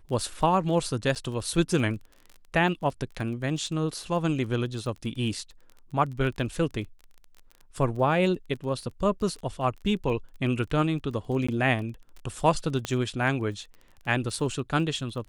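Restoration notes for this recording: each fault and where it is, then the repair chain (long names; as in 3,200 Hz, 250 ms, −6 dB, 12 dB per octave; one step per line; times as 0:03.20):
surface crackle 24 per second −36 dBFS
0:01.15–0:01.16: drop-out 7.6 ms
0:11.47–0:11.48: drop-out 15 ms
0:12.85: click −15 dBFS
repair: click removal
repair the gap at 0:01.15, 7.6 ms
repair the gap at 0:11.47, 15 ms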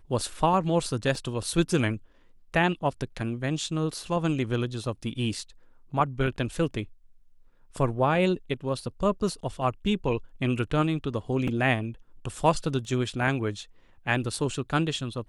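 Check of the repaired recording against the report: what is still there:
0:12.85: click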